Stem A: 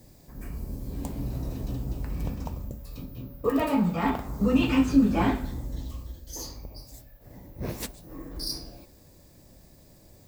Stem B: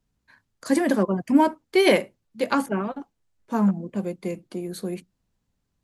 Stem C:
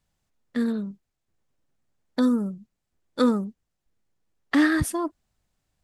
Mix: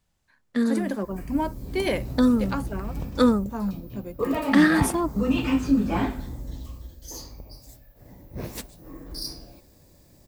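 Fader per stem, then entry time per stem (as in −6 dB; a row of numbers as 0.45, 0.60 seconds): −1.0, −8.0, +2.0 decibels; 0.75, 0.00, 0.00 seconds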